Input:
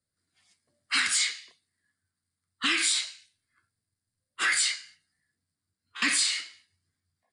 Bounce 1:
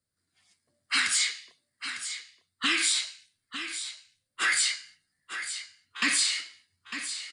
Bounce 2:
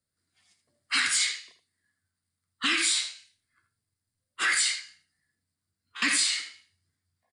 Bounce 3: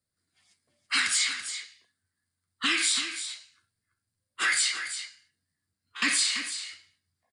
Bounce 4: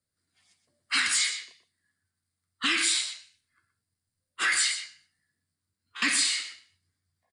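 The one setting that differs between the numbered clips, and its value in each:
single-tap delay, delay time: 902, 79, 334, 122 milliseconds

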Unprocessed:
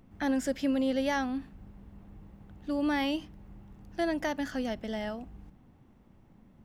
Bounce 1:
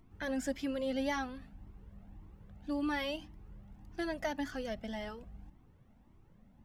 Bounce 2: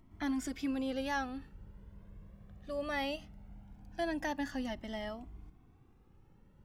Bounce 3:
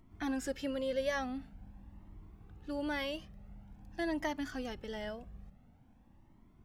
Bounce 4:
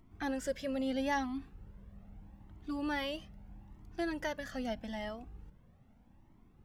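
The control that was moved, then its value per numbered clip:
flanger whose copies keep moving one way, speed: 1.8, 0.2, 0.47, 0.79 Hertz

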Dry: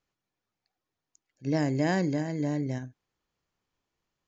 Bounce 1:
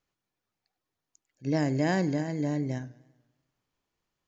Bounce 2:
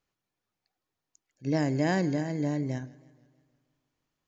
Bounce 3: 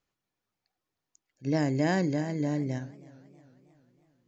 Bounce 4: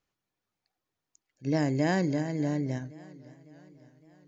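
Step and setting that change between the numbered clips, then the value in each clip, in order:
feedback echo with a swinging delay time, delay time: 98, 159, 316, 557 milliseconds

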